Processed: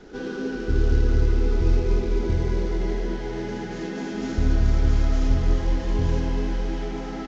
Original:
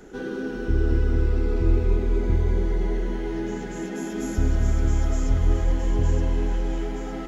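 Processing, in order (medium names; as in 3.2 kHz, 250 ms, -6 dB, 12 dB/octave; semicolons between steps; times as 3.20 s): CVSD coder 32 kbps; multi-tap echo 62/80 ms -11/-6.5 dB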